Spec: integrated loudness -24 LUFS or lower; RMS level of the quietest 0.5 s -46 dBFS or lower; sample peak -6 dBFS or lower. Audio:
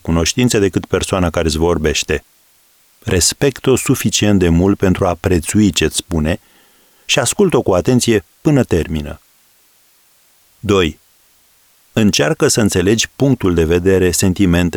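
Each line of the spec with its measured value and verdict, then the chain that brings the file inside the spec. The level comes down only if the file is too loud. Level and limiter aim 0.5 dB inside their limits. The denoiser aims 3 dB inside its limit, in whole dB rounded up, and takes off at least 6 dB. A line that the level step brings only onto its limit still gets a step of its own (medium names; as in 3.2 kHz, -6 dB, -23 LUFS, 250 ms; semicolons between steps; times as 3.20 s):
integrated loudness -14.5 LUFS: fail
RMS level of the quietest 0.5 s -53 dBFS: pass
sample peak -2.5 dBFS: fail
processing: trim -10 dB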